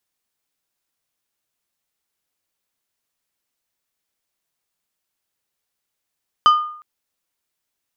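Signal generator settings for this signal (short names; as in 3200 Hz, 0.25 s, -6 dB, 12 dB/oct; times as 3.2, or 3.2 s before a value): glass hit plate, length 0.36 s, lowest mode 1220 Hz, decay 0.60 s, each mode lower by 11 dB, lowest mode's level -6 dB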